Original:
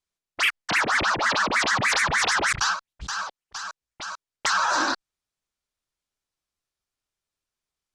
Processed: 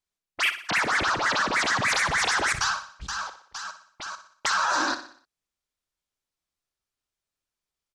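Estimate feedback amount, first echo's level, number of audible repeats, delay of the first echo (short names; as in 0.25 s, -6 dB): 47%, -11.5 dB, 4, 61 ms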